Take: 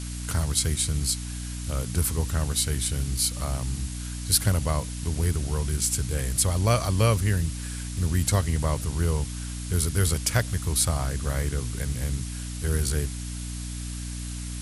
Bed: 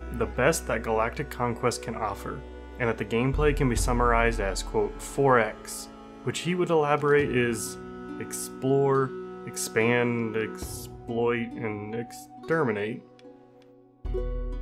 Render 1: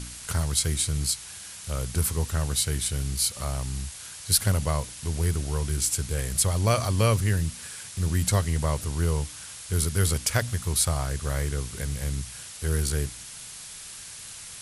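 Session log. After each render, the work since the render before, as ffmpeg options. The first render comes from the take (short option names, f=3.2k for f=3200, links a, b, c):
-af "bandreject=f=60:t=h:w=4,bandreject=f=120:t=h:w=4,bandreject=f=180:t=h:w=4,bandreject=f=240:t=h:w=4,bandreject=f=300:t=h:w=4"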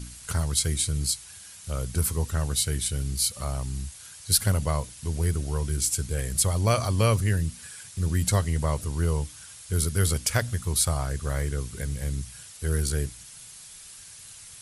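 -af "afftdn=nr=7:nf=-42"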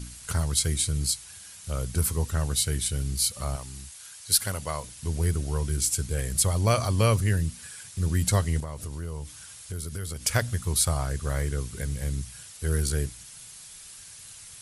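-filter_complex "[0:a]asettb=1/sr,asplit=3[a][b][c];[a]atrim=end=3.564[d];[b]atrim=start=3.56:end=4.84,asetpts=PTS-STARTPTS,afade=t=in:d=0.004:c=qsin,afade=t=out:st=1.276:d=0.004:c=qsin,lowshelf=f=370:g=-11[e];[c]atrim=start=4.836[f];[d][e]acrossfade=d=0.004:c1=hsin:c2=qsin[g];[g][f]acrossfade=d=0.004:c1=qsin:c2=hsin,asettb=1/sr,asplit=3[h][i][j];[h]atrim=end=8.604[k];[i]atrim=start=8.6:end=10.24,asetpts=PTS-STARTPTS,afade=t=in:d=0.004:c=qsin,afade=t=out:st=1.636:d=0.004:c=qsin,acompressor=threshold=-31dB:ratio=6:attack=3.2:release=140:knee=1:detection=peak[l];[j]atrim=start=10.236[m];[k][l]acrossfade=d=0.004:c1=hsin:c2=qsin[n];[n][m]acrossfade=d=0.004:c1=qsin:c2=hsin"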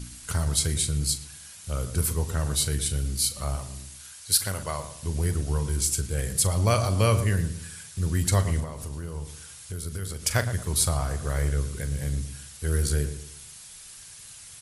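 -filter_complex "[0:a]asplit=2[a][b];[b]adelay=41,volume=-12.5dB[c];[a][c]amix=inputs=2:normalize=0,asplit=2[d][e];[e]adelay=113,lowpass=f=1.5k:p=1,volume=-10dB,asplit=2[f][g];[g]adelay=113,lowpass=f=1.5k:p=1,volume=0.38,asplit=2[h][i];[i]adelay=113,lowpass=f=1.5k:p=1,volume=0.38,asplit=2[j][k];[k]adelay=113,lowpass=f=1.5k:p=1,volume=0.38[l];[d][f][h][j][l]amix=inputs=5:normalize=0"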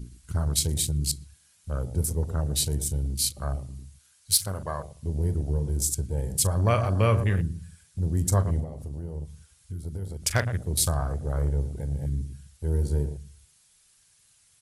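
-af "afwtdn=0.02"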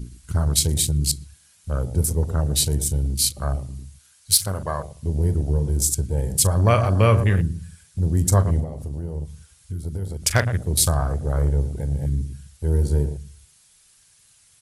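-af "volume=5.5dB,alimiter=limit=-2dB:level=0:latency=1"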